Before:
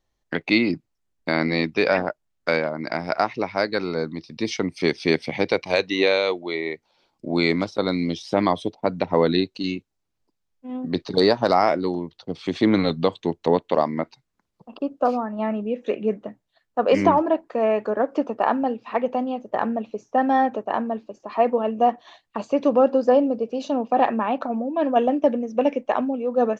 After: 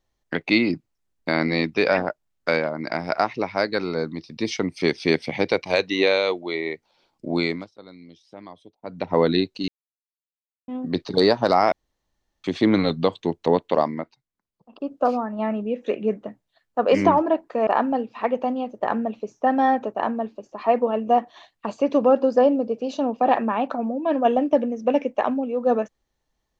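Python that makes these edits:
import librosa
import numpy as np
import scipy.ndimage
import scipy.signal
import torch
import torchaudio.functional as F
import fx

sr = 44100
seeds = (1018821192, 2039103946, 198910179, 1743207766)

y = fx.edit(x, sr, fx.fade_down_up(start_s=7.32, length_s=1.86, db=-21.5, fade_s=0.37),
    fx.silence(start_s=9.68, length_s=1.0),
    fx.room_tone_fill(start_s=11.72, length_s=0.72),
    fx.fade_down_up(start_s=13.86, length_s=1.08, db=-12.0, fade_s=0.43, curve='qua'),
    fx.cut(start_s=17.67, length_s=0.71), tone=tone)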